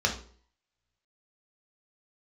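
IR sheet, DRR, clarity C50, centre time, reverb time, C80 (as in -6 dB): 0.0 dB, 9.0 dB, 17 ms, 0.50 s, 14.5 dB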